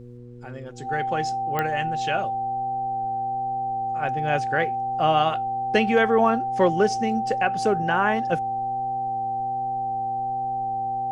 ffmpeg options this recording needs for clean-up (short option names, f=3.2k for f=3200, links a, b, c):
-af "adeclick=t=4,bandreject=f=121.3:t=h:w=4,bandreject=f=242.6:t=h:w=4,bandreject=f=363.9:t=h:w=4,bandreject=f=485.2:t=h:w=4,bandreject=f=780:w=30,agate=range=-21dB:threshold=-19dB"